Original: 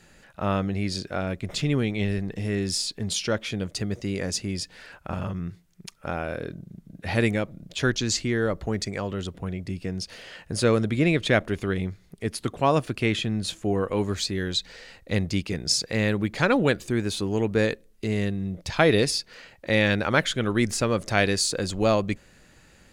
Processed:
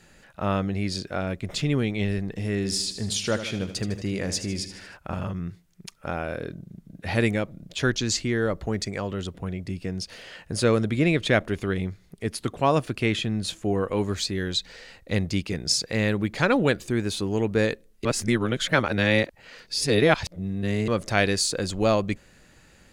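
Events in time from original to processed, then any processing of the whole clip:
0:02.56–0:04.97: repeating echo 77 ms, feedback 55%, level −11 dB
0:18.05–0:20.88: reverse

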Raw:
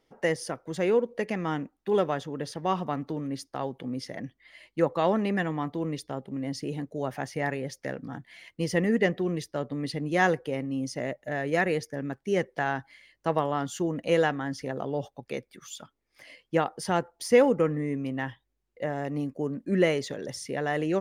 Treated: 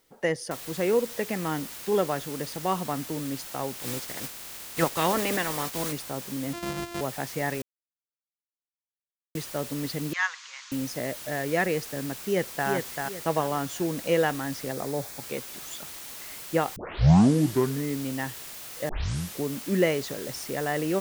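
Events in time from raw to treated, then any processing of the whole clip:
0:00.51: noise floor change −69 dB −41 dB
0:03.77–0:05.91: ceiling on every frequency bin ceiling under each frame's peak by 15 dB
0:06.53–0:07.01: samples sorted by size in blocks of 128 samples
0:07.62–0:09.35: silence
0:10.13–0:10.72: Chebyshev band-pass filter 1,000–6,800 Hz, order 4
0:12.19–0:12.69: delay throw 390 ms, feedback 30%, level −4 dB
0:14.72–0:15.23: parametric band 2,900 Hz −11 dB 0.23 octaves
0:16.76: tape start 1.07 s
0:18.89: tape start 0.55 s

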